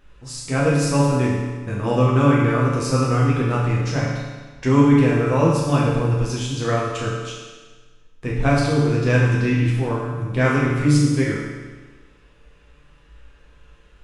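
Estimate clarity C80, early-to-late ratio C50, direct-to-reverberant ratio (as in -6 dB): 2.5 dB, 0.0 dB, -6.0 dB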